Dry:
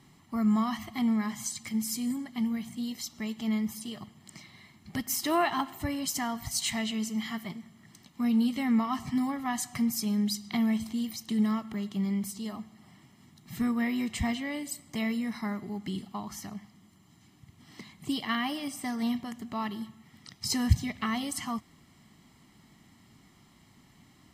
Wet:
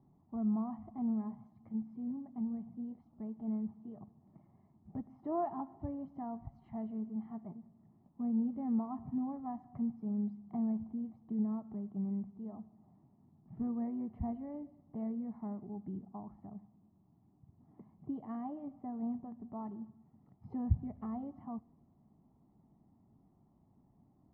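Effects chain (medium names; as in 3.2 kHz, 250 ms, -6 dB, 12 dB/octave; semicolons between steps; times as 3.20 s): Chebyshev low-pass 790 Hz, order 3; on a send: reverberation RT60 0.75 s, pre-delay 5 ms, DRR 23.5 dB; on the sum: trim -7 dB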